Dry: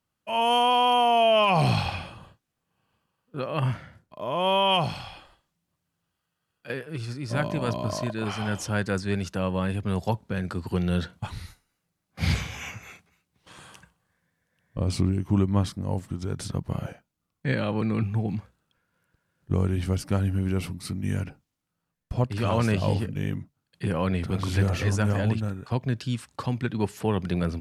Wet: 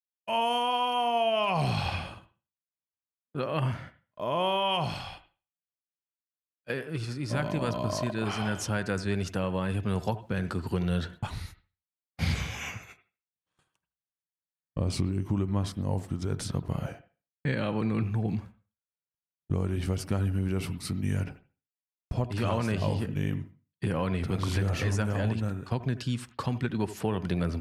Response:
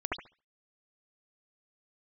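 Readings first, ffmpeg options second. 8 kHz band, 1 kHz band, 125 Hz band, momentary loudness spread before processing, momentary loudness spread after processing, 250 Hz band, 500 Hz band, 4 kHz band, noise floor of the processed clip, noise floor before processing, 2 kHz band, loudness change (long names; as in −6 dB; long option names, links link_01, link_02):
−1.5 dB, −5.0 dB, −3.0 dB, 14 LU, 10 LU, −3.0 dB, −4.0 dB, −5.0 dB, below −85 dBFS, −81 dBFS, −3.5 dB, −4.0 dB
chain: -filter_complex "[0:a]agate=range=-37dB:threshold=-43dB:ratio=16:detection=peak,acompressor=threshold=-24dB:ratio=6,asplit=2[link_01][link_02];[1:a]atrim=start_sample=2205,adelay=13[link_03];[link_02][link_03]afir=irnorm=-1:irlink=0,volume=-19.5dB[link_04];[link_01][link_04]amix=inputs=2:normalize=0"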